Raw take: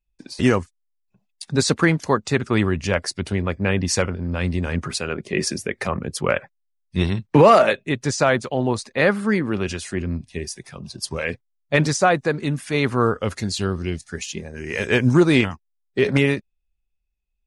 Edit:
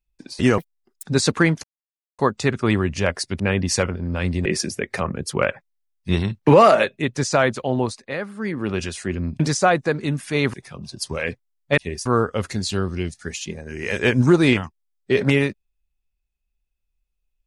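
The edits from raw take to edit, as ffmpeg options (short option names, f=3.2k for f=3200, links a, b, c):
-filter_complex "[0:a]asplit=12[a][b][c][d][e][f][g][h][i][j][k][l];[a]atrim=end=0.584[m];[b]atrim=start=0.58:end=1.46,asetpts=PTS-STARTPTS,asetrate=85113,aresample=44100[n];[c]atrim=start=1.456:end=2.06,asetpts=PTS-STARTPTS,afade=t=out:st=0.6:d=0.004:c=hsin,apad=pad_dur=0.55[o];[d]atrim=start=2.06:end=3.272,asetpts=PTS-STARTPTS,afade=t=in:d=0.004:c=hsin[p];[e]atrim=start=3.588:end=4.652[q];[f]atrim=start=5.328:end=9.04,asetpts=PTS-STARTPTS,afade=t=out:st=3.342:d=0.37:silence=0.281838[r];[g]atrim=start=9.04:end=9.24,asetpts=PTS-STARTPTS,volume=-11dB[s];[h]atrim=start=9.24:end=10.272,asetpts=PTS-STARTPTS,afade=t=in:d=0.37:silence=0.281838[t];[i]atrim=start=11.788:end=12.932[u];[j]atrim=start=10.548:end=11.792[v];[k]atrim=start=10.268:end=10.552[w];[l]atrim=start=12.928[x];[m][n]acrossfade=d=0.004:c1=hsin:c2=hsin[y];[o][p]concat=n=2:v=0:a=1[z];[y][z]acrossfade=d=0.004:c1=hsin:c2=hsin[aa];[aa][q]acrossfade=d=0.004:c1=hsin:c2=hsin[ab];[r][s][t]concat=n=3:v=0:a=1[ac];[ab][ac]acrossfade=d=0.004:c1=hsin:c2=hsin[ad];[ad][u]acrossfade=d=0.004:c1=hsin:c2=hsin[ae];[ae][v]acrossfade=d=0.004:c1=hsin:c2=hsin[af];[af][w]acrossfade=d=0.004:c1=hsin:c2=hsin[ag];[ag][x]acrossfade=d=0.004:c1=hsin:c2=hsin"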